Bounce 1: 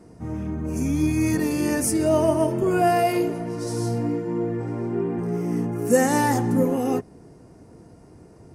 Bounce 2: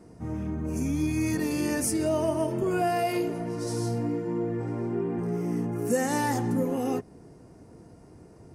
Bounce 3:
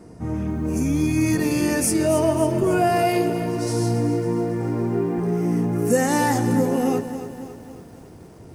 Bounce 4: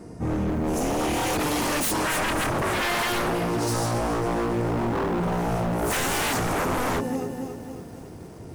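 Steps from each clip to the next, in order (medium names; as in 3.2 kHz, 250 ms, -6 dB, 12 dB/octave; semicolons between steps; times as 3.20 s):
dynamic bell 3.8 kHz, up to +3 dB, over -39 dBFS, Q 0.8; compression 2:1, threshold -23 dBFS, peak gain reduction 6.5 dB; trim -2.5 dB
bit-crushed delay 275 ms, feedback 55%, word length 9-bit, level -11 dB; trim +6.5 dB
wavefolder -22.5 dBFS; trim +2.5 dB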